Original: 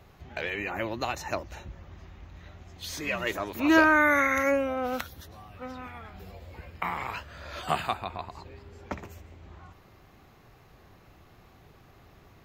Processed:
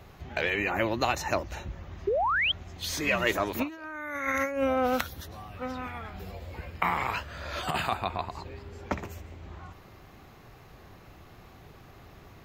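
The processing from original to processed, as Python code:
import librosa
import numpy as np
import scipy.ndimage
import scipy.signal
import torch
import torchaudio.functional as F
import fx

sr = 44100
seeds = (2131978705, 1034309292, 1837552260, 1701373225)

y = fx.spec_paint(x, sr, seeds[0], shape='rise', start_s=2.07, length_s=0.45, low_hz=370.0, high_hz=3400.0, level_db=-27.0)
y = fx.over_compress(y, sr, threshold_db=-28.0, ratio=-0.5)
y = F.gain(torch.from_numpy(y), 1.5).numpy()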